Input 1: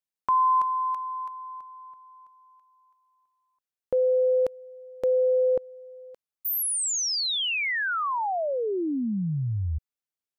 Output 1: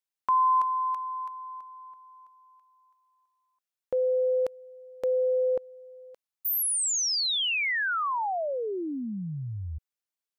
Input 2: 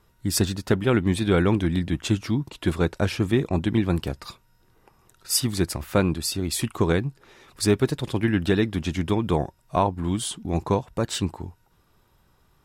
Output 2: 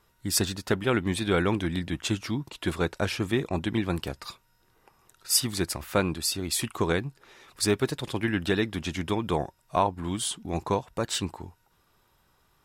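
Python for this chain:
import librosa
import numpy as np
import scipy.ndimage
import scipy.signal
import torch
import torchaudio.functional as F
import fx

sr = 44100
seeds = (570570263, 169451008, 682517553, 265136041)

y = fx.low_shelf(x, sr, hz=430.0, db=-7.5)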